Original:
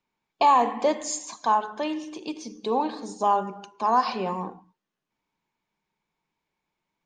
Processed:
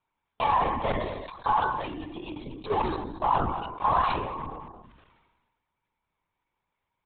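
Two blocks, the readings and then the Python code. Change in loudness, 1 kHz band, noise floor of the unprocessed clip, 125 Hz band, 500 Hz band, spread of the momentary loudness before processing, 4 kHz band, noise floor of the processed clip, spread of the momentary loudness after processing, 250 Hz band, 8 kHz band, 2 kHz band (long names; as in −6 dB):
−3.0 dB, −2.5 dB, −85 dBFS, +7.5 dB, −4.5 dB, 15 LU, −3.5 dB, −83 dBFS, 14 LU, −4.5 dB, below −40 dB, +1.5 dB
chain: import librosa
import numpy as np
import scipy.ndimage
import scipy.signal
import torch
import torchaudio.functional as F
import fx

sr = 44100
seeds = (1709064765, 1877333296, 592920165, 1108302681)

p1 = (np.mod(10.0 ** (22.5 / 20.0) * x + 1.0, 2.0) - 1.0) / 10.0 ** (22.5 / 20.0)
p2 = x + F.gain(torch.from_numpy(p1), -11.0).numpy()
p3 = fx.hum_notches(p2, sr, base_hz=60, count=10)
p4 = fx.level_steps(p3, sr, step_db=12)
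p5 = fx.peak_eq(p4, sr, hz=1100.0, db=5.5, octaves=0.88)
p6 = p5 + fx.echo_single(p5, sr, ms=220, db=-16.5, dry=0)
p7 = fx.dynamic_eq(p6, sr, hz=660.0, q=1.2, threshold_db=-36.0, ratio=4.0, max_db=-3)
p8 = fx.lpc_vocoder(p7, sr, seeds[0], excitation='whisper', order=16)
p9 = fx.sustainer(p8, sr, db_per_s=41.0)
y = F.gain(torch.from_numpy(p9), -1.0).numpy()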